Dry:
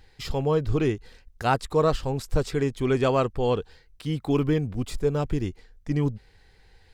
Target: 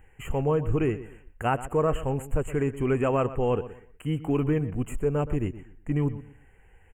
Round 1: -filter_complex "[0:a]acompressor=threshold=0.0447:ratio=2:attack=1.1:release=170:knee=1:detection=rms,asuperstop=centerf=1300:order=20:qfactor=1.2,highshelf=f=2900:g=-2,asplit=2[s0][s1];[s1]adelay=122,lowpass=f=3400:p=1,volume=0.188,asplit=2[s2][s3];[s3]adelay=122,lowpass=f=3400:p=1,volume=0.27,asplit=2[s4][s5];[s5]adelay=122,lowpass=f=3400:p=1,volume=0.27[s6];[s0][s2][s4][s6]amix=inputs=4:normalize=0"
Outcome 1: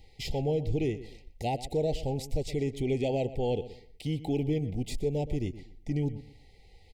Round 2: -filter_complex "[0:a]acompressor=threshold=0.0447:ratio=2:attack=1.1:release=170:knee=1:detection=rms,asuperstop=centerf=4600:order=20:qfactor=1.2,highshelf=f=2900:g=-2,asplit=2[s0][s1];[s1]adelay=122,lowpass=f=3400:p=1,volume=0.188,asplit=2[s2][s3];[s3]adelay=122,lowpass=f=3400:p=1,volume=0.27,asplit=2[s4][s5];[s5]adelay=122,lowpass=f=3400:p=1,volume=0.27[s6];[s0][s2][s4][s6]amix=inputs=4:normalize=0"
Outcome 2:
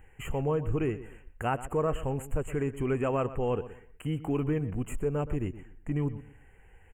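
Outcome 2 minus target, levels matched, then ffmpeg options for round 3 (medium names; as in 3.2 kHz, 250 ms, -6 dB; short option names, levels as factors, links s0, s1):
compression: peak gain reduction +4.5 dB
-filter_complex "[0:a]acompressor=threshold=0.119:ratio=2:attack=1.1:release=170:knee=1:detection=rms,asuperstop=centerf=4600:order=20:qfactor=1.2,highshelf=f=2900:g=-2,asplit=2[s0][s1];[s1]adelay=122,lowpass=f=3400:p=1,volume=0.188,asplit=2[s2][s3];[s3]adelay=122,lowpass=f=3400:p=1,volume=0.27,asplit=2[s4][s5];[s5]adelay=122,lowpass=f=3400:p=1,volume=0.27[s6];[s0][s2][s4][s6]amix=inputs=4:normalize=0"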